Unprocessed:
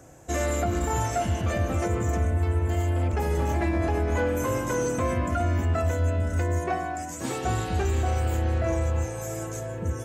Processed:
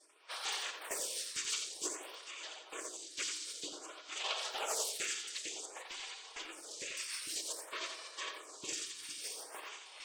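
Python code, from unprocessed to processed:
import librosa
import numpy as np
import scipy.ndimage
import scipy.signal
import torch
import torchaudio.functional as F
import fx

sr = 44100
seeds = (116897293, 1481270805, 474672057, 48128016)

p1 = scipy.signal.sosfilt(scipy.signal.butter(6, 410.0, 'highpass', fs=sr, output='sos'), x)
p2 = fx.noise_vocoder(p1, sr, seeds[0], bands=16)
p3 = fx.peak_eq(p2, sr, hz=2000.0, db=14.0, octaves=1.4, at=(4.24, 4.97))
p4 = fx.rider(p3, sr, range_db=4, speed_s=2.0)
p5 = p3 + (p4 * 10.0 ** (3.0 / 20.0))
p6 = 10.0 ** (-16.0 / 20.0) * np.tanh(p5 / 10.0 ** (-16.0 / 20.0))
p7 = fx.filter_lfo_highpass(p6, sr, shape='saw_up', hz=2.2, low_hz=940.0, high_hz=3400.0, q=0.72)
p8 = fx.notch_comb(p7, sr, f0_hz=590.0, at=(7.77, 9.66))
p9 = fx.spec_gate(p8, sr, threshold_db=-15, keep='weak')
p10 = p9 + fx.echo_single(p9, sr, ms=87, db=-7.0, dry=0)
p11 = fx.room_shoebox(p10, sr, seeds[1], volume_m3=1400.0, walls='mixed', distance_m=0.56)
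p12 = fx.stagger_phaser(p11, sr, hz=0.53)
y = p12 * 10.0 ** (4.5 / 20.0)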